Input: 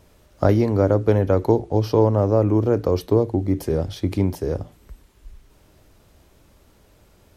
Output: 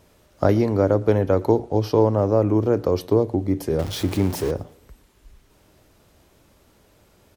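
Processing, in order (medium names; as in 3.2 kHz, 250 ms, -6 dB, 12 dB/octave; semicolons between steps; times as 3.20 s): 3.79–4.51 s: jump at every zero crossing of -27.5 dBFS; bass shelf 71 Hz -9 dB; feedback delay 114 ms, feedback 42%, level -24 dB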